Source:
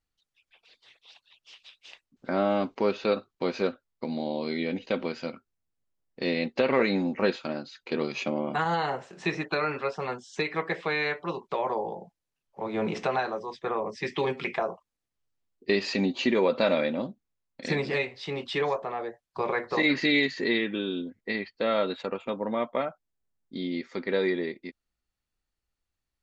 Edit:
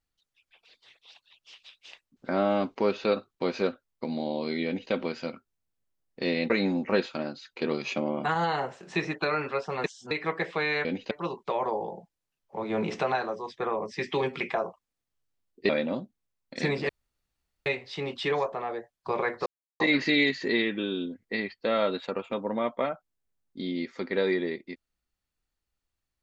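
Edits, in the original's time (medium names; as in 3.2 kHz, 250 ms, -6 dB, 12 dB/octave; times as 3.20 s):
4.66–4.92 s: copy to 11.15 s
6.50–6.80 s: delete
10.14–10.41 s: reverse
15.73–16.76 s: delete
17.96 s: insert room tone 0.77 s
19.76 s: insert silence 0.34 s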